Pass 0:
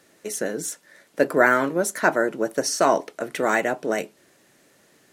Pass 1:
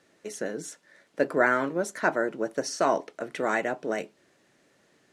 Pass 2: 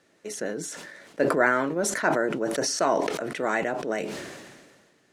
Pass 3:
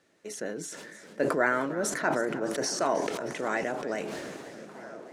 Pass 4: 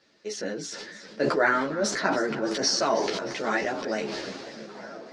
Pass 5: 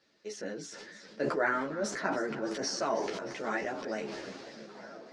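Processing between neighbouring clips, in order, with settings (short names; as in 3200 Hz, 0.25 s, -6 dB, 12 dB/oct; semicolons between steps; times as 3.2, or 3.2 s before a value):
air absorption 56 m; gain -5 dB
sustainer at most 36 dB/s
delay with a stepping band-pass 0.678 s, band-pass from 190 Hz, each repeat 0.7 oct, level -11 dB; warbling echo 0.31 s, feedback 69%, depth 119 cents, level -16 dB; gain -4 dB
synth low-pass 4800 Hz, resonance Q 3.2; ensemble effect; gain +5.5 dB
dynamic EQ 4200 Hz, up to -7 dB, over -45 dBFS, Q 1.5; gain -6.5 dB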